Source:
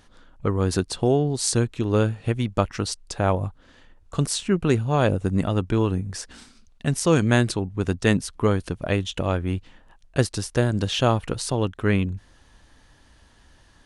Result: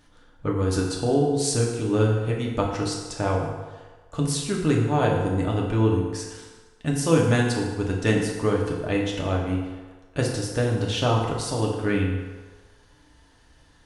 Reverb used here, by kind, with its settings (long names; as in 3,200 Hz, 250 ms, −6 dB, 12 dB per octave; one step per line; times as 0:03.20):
feedback delay network reverb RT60 1.4 s, low-frequency decay 0.7×, high-frequency decay 0.7×, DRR −2 dB
level −5 dB